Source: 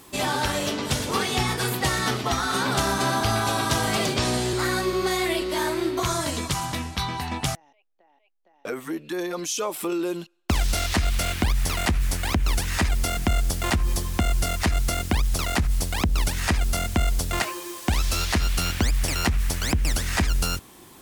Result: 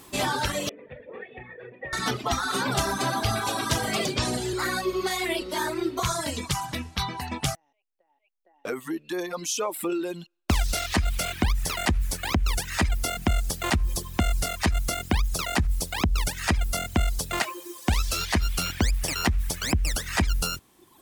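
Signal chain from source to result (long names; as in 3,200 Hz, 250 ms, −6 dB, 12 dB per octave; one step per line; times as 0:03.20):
reverb reduction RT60 1.5 s
0:00.69–0:01.93: formant resonators in series e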